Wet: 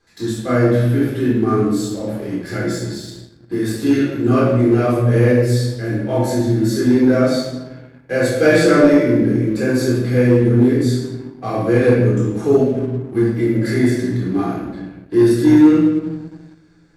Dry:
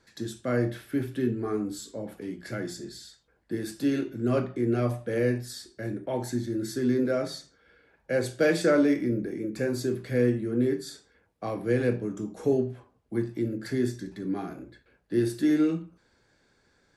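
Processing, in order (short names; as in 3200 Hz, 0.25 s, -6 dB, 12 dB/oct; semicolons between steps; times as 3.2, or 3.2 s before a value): shoebox room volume 500 m³, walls mixed, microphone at 3.8 m; sample leveller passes 1; 13.38–14.17 thirty-one-band EQ 630 Hz +6 dB, 2000 Hz +7 dB, 10000 Hz +5 dB; gain -1 dB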